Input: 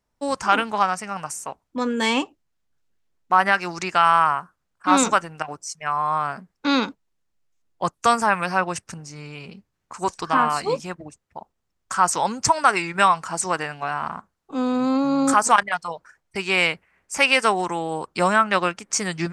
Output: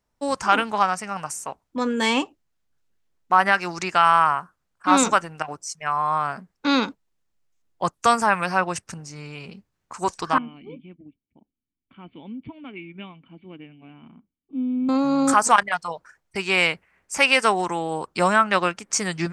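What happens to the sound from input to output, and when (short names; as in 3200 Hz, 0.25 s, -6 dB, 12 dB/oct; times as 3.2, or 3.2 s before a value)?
10.38–14.89 vocal tract filter i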